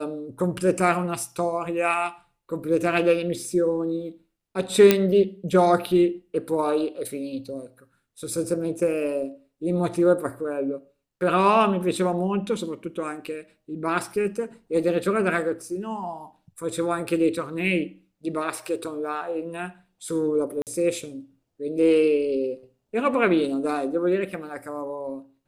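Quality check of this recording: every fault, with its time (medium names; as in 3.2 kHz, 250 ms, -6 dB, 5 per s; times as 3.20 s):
4.91 s: pop -2 dBFS
20.62–20.67 s: dropout 48 ms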